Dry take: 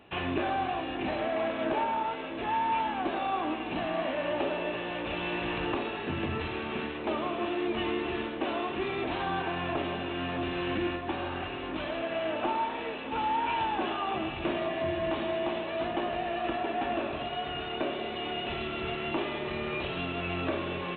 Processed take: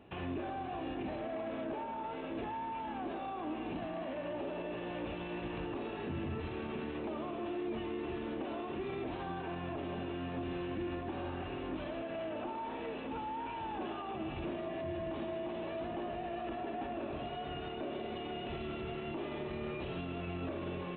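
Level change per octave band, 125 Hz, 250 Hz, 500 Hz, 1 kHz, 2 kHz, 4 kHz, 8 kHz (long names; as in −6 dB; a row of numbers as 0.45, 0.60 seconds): −4.0 dB, −5.5 dB, −7.0 dB, −10.0 dB, −12.0 dB, −12.5 dB, can't be measured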